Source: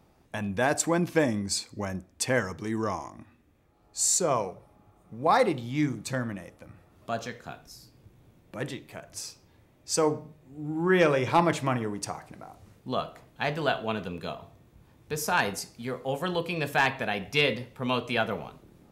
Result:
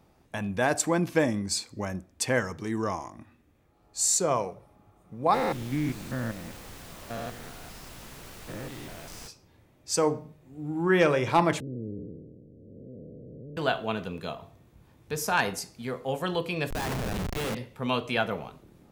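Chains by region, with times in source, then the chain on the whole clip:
5.33–9.27 stepped spectrum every 0.2 s + tone controls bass +1 dB, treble -6 dB + added noise pink -45 dBFS
11.6–13.57 time blur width 0.467 s + steep low-pass 520 Hz 72 dB/oct
16.7–17.55 transient shaper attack -4 dB, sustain +11 dB + compressor 2:1, threshold -28 dBFS + Schmitt trigger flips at -29 dBFS
whole clip: dry

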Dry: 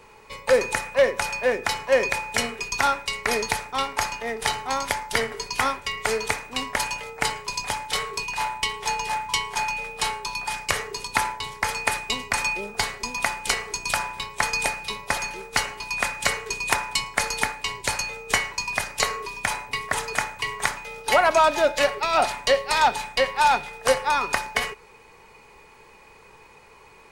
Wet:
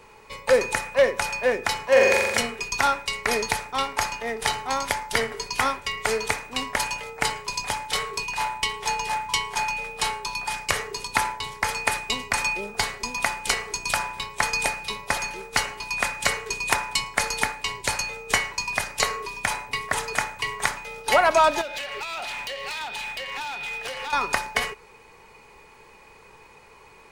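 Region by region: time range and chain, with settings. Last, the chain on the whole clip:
1.87–2.41 HPF 51 Hz + flutter echo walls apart 7.4 m, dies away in 1.2 s
21.61–24.13 bell 2900 Hz +13 dB 1.6 oct + compressor 20:1, threshold -26 dBFS + hard clip -28 dBFS
whole clip: dry

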